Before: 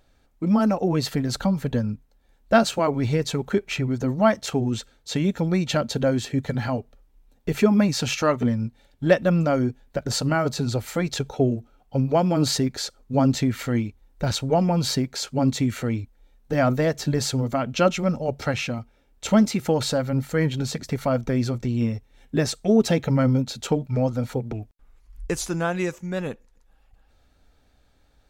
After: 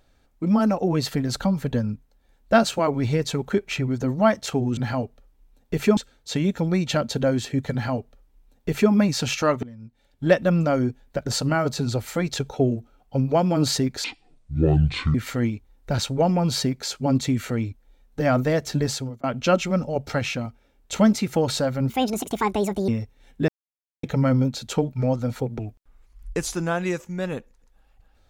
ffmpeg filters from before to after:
ffmpeg -i in.wav -filter_complex "[0:a]asplit=11[link_01][link_02][link_03][link_04][link_05][link_06][link_07][link_08][link_09][link_10][link_11];[link_01]atrim=end=4.772[link_12];[link_02]atrim=start=6.518:end=7.722[link_13];[link_03]atrim=start=4.768:end=8.43,asetpts=PTS-STARTPTS,afade=type=out:start_time=3.658:duration=0.004:curve=hsin:silence=0.1[link_14];[link_04]atrim=start=8.43:end=12.844,asetpts=PTS-STARTPTS,afade=type=in:duration=0.64:curve=qua:silence=0.1[link_15];[link_05]atrim=start=12.84:end=13.47,asetpts=PTS-STARTPTS,asetrate=25137,aresample=44100,atrim=end_sample=48742,asetpts=PTS-STARTPTS[link_16];[link_06]atrim=start=13.466:end=17.56,asetpts=PTS-STARTPTS,afade=type=out:start_time=3.704:duration=0.39[link_17];[link_07]atrim=start=17.56:end=20.224,asetpts=PTS-STARTPTS,afade=type=in:duration=0.004:curve=hsin[link_18];[link_08]atrim=start=20.22:end=21.82,asetpts=PTS-STARTPTS,asetrate=71442,aresample=44100[link_19];[link_09]atrim=start=21.816:end=22.42,asetpts=PTS-STARTPTS,afade=type=out:start_time=0.6:duration=0.004:curve=hsin[link_20];[link_10]atrim=start=22.42:end=22.97,asetpts=PTS-STARTPTS,volume=0[link_21];[link_11]atrim=start=22.97,asetpts=PTS-STARTPTS,afade=type=in:duration=0.004:curve=hsin[link_22];[link_12][link_13]acrossfade=duration=0.004:curve1=hsin:curve2=hsin[link_23];[link_14][link_15]concat=n=2:v=0:a=1[link_24];[link_23][link_24]acrossfade=duration=0.004:curve1=hsin:curve2=hsin[link_25];[link_25][link_16]acrossfade=duration=0.004:curve1=hsin:curve2=hsin[link_26];[link_17][link_18]concat=n=2:v=0:a=1[link_27];[link_26][link_27]acrossfade=duration=0.004:curve1=hsin:curve2=hsin[link_28];[link_28][link_19]acrossfade=duration=0.004:curve1=hsin:curve2=hsin[link_29];[link_20][link_21][link_22]concat=n=3:v=0:a=1[link_30];[link_29][link_30]acrossfade=duration=0.004:curve1=hsin:curve2=hsin" out.wav

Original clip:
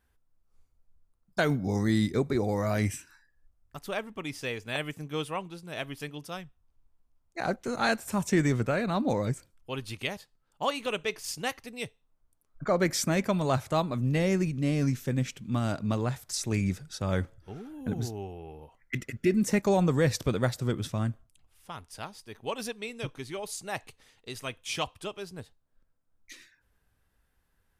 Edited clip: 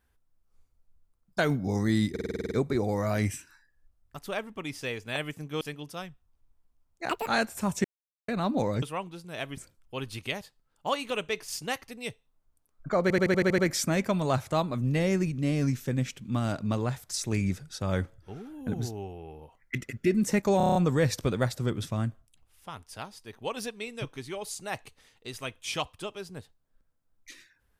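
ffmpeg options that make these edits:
ffmpeg -i in.wav -filter_complex "[0:a]asplit=29[link_01][link_02][link_03][link_04][link_05][link_06][link_07][link_08][link_09][link_10][link_11][link_12][link_13][link_14][link_15][link_16][link_17][link_18][link_19][link_20][link_21][link_22][link_23][link_24][link_25][link_26][link_27][link_28][link_29];[link_01]atrim=end=2.162[link_30];[link_02]atrim=start=2.108:end=2.162[link_31];[link_03]atrim=start=2.108:end=2.162[link_32];[link_04]atrim=start=2.108:end=2.162[link_33];[link_05]atrim=start=2.108:end=2.162[link_34];[link_06]atrim=start=2.108:end=2.162[link_35];[link_07]atrim=start=2.108:end=2.162[link_36];[link_08]atrim=start=2.108:end=2.162[link_37];[link_09]atrim=start=2.108:end=5.212[link_38];[link_10]atrim=start=5.958:end=7.444[link_39];[link_11]atrim=start=7.44:end=7.78,asetpts=PTS-STARTPTS,asetrate=82026,aresample=44100,atrim=end_sample=8061,asetpts=PTS-STARTPTS[link_40];[link_12]atrim=start=7.776:end=8.35,asetpts=PTS-STARTPTS,afade=type=out:start_time=0.57:duration=0.004:curve=hsin[link_41];[link_13]atrim=start=8.35:end=8.79,asetpts=PTS-STARTPTS,volume=0[link_42];[link_14]atrim=start=8.79:end=9.332,asetpts=PTS-STARTPTS,afade=type=in:duration=0.004:curve=hsin[link_43];[link_15]atrim=start=5.208:end=5.962[link_44];[link_16]atrim=start=9.328:end=12.862[link_45];[link_17]atrim=start=12.778:end=12.862[link_46];[link_18]atrim=start=12.778:end=12.862[link_47];[link_19]atrim=start=12.778:end=12.862[link_48];[link_20]atrim=start=12.778:end=12.862[link_49];[link_21]atrim=start=12.778:end=12.862[link_50];[link_22]atrim=start=12.778:end=12.862[link_51];[link_23]atrim=start=12.778:end=19.802[link_52];[link_24]atrim=start=19.768:end=19.802[link_53];[link_25]atrim=start=19.768:end=19.802[link_54];[link_26]atrim=start=19.768:end=19.802[link_55];[link_27]atrim=start=19.768:end=19.802[link_56];[link_28]atrim=start=19.768:end=19.802[link_57];[link_29]atrim=start=19.768[link_58];[link_30][link_31]acrossfade=duration=0.004:curve1=hsin:curve2=hsin[link_59];[link_59][link_32]acrossfade=duration=0.004:curve1=hsin:curve2=hsin[link_60];[link_60][link_33]acrossfade=duration=0.004:curve1=hsin:curve2=hsin[link_61];[link_61][link_34]acrossfade=duration=0.004:curve1=hsin:curve2=hsin[link_62];[link_62][link_35]acrossfade=duration=0.004:curve1=hsin:curve2=hsin[link_63];[link_63][link_36]acrossfade=duration=0.004:curve1=hsin:curve2=hsin[link_64];[link_64][link_37]acrossfade=duration=0.004:curve1=hsin:curve2=hsin[link_65];[link_65][link_38]acrossfade=duration=0.004:curve1=hsin:curve2=hsin[link_66];[link_66][link_39]acrossfade=duration=0.004:curve1=hsin:curve2=hsin[link_67];[link_67][link_40]acrossfade=duration=0.004:curve1=hsin:curve2=hsin[link_68];[link_41][link_42][link_43]concat=n=3:v=0:a=1[link_69];[link_68][link_69]acrossfade=duration=0.004:curve1=hsin:curve2=hsin[link_70];[link_70][link_44]acrossfade=duration=0.004:curve1=hsin:curve2=hsin[link_71];[link_71][link_45]acrossfade=duration=0.004:curve1=hsin:curve2=hsin[link_72];[link_72][link_46]acrossfade=duration=0.004:curve1=hsin:curve2=hsin[link_73];[link_73][link_47]acrossfade=duration=0.004:curve1=hsin:curve2=hsin[link_74];[link_74][link_48]acrossfade=duration=0.004:curve1=hsin:curve2=hsin[link_75];[link_75][link_49]acrossfade=duration=0.004:curve1=hsin:curve2=hsin[link_76];[link_76][link_50]acrossfade=duration=0.004:curve1=hsin:curve2=hsin[link_77];[link_77][link_51]acrossfade=duration=0.004:curve1=hsin:curve2=hsin[link_78];[link_78][link_52]acrossfade=duration=0.004:curve1=hsin:curve2=hsin[link_79];[link_79][link_53]acrossfade=duration=0.004:curve1=hsin:curve2=hsin[link_80];[link_80][link_54]acrossfade=duration=0.004:curve1=hsin:curve2=hsin[link_81];[link_81][link_55]acrossfade=duration=0.004:curve1=hsin:curve2=hsin[link_82];[link_82][link_56]acrossfade=duration=0.004:curve1=hsin:curve2=hsin[link_83];[link_83][link_57]acrossfade=duration=0.004:curve1=hsin:curve2=hsin[link_84];[link_84][link_58]acrossfade=duration=0.004:curve1=hsin:curve2=hsin" out.wav

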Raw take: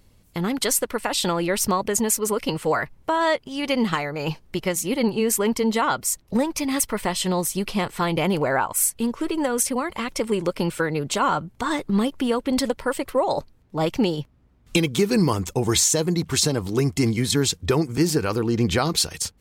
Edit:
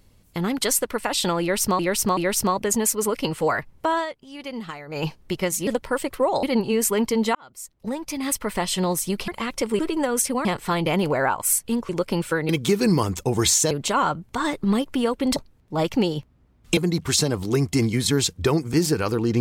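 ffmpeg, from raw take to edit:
ffmpeg -i in.wav -filter_complex "[0:a]asplit=16[link_01][link_02][link_03][link_04][link_05][link_06][link_07][link_08][link_09][link_10][link_11][link_12][link_13][link_14][link_15][link_16];[link_01]atrim=end=1.792[link_17];[link_02]atrim=start=1.408:end=1.792[link_18];[link_03]atrim=start=1.408:end=3.3,asetpts=PTS-STARTPTS,afade=type=out:start_time=1.772:duration=0.12:silence=0.281838[link_19];[link_04]atrim=start=3.3:end=4.1,asetpts=PTS-STARTPTS,volume=-11dB[link_20];[link_05]atrim=start=4.1:end=4.912,asetpts=PTS-STARTPTS,afade=type=in:duration=0.12:silence=0.281838[link_21];[link_06]atrim=start=12.618:end=13.382[link_22];[link_07]atrim=start=4.908:end=5.83,asetpts=PTS-STARTPTS,afade=type=out:start_time=0.918:duration=0.004:curve=hsin[link_23];[link_08]atrim=start=5.83:end=7.762,asetpts=PTS-STARTPTS,afade=type=in:duration=1.28[link_24];[link_09]atrim=start=9.858:end=10.372[link_25];[link_10]atrim=start=9.198:end=9.862[link_26];[link_11]atrim=start=7.758:end=9.202[link_27];[link_12]atrim=start=10.368:end=10.972[link_28];[link_13]atrim=start=14.788:end=16.012[link_29];[link_14]atrim=start=10.968:end=12.622[link_30];[link_15]atrim=start=13.378:end=14.792[link_31];[link_16]atrim=start=16.008[link_32];[link_17][link_18]acrossfade=duration=0.004:curve1=hsin:curve2=hsin[link_33];[link_19][link_20][link_21]concat=n=3:v=0:a=1[link_34];[link_33][link_34]acrossfade=duration=0.004:curve1=hsin:curve2=hsin[link_35];[link_35][link_22]acrossfade=duration=0.004:curve1=hsin:curve2=hsin[link_36];[link_23][link_24]concat=n=2:v=0:a=1[link_37];[link_36][link_37]acrossfade=duration=0.004:curve1=hsin:curve2=hsin[link_38];[link_38][link_25]acrossfade=duration=0.004:curve1=hsin:curve2=hsin[link_39];[link_39][link_26]acrossfade=duration=0.004:curve1=hsin:curve2=hsin[link_40];[link_40][link_27]acrossfade=duration=0.004:curve1=hsin:curve2=hsin[link_41];[link_41][link_28]acrossfade=duration=0.004:curve1=hsin:curve2=hsin[link_42];[link_42][link_29]acrossfade=duration=0.004:curve1=hsin:curve2=hsin[link_43];[link_43][link_30]acrossfade=duration=0.004:curve1=hsin:curve2=hsin[link_44];[link_44][link_31]acrossfade=duration=0.004:curve1=hsin:curve2=hsin[link_45];[link_45][link_32]acrossfade=duration=0.004:curve1=hsin:curve2=hsin" out.wav

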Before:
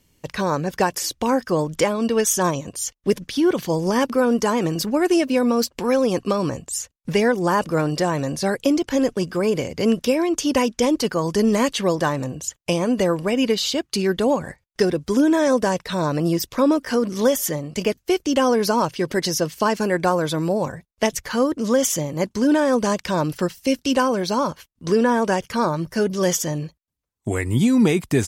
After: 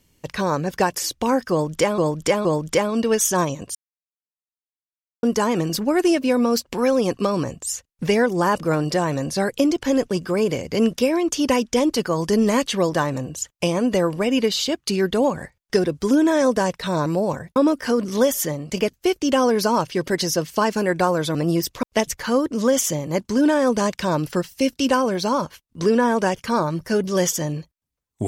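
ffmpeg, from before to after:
ffmpeg -i in.wav -filter_complex "[0:a]asplit=9[link_01][link_02][link_03][link_04][link_05][link_06][link_07][link_08][link_09];[link_01]atrim=end=1.982[link_10];[link_02]atrim=start=1.508:end=1.982[link_11];[link_03]atrim=start=1.508:end=2.81,asetpts=PTS-STARTPTS,afade=type=out:start_time=1.298:duration=0.004:curve=hsin[link_12];[link_04]atrim=start=2.81:end=4.29,asetpts=PTS-STARTPTS,volume=0[link_13];[link_05]atrim=start=4.29:end=16.122,asetpts=PTS-STARTPTS,afade=type=in:duration=0.004:curve=hsin[link_14];[link_06]atrim=start=20.388:end=20.892[link_15];[link_07]atrim=start=16.598:end=20.392[link_16];[link_08]atrim=start=16.118:end=16.602[link_17];[link_09]atrim=start=20.888[link_18];[link_10][link_11]acrossfade=duration=0.004:curve1=hsin:curve2=hsin[link_19];[link_12][link_13][link_14]concat=n=3:v=0:a=1[link_20];[link_19][link_20]acrossfade=duration=0.004:curve1=hsin:curve2=hsin[link_21];[link_21][link_15]acrossfade=duration=0.004:curve1=hsin:curve2=hsin[link_22];[link_22][link_16]acrossfade=duration=0.004:curve1=hsin:curve2=hsin[link_23];[link_23][link_17]acrossfade=duration=0.004:curve1=hsin:curve2=hsin[link_24];[link_24][link_18]acrossfade=duration=0.004:curve1=hsin:curve2=hsin" out.wav

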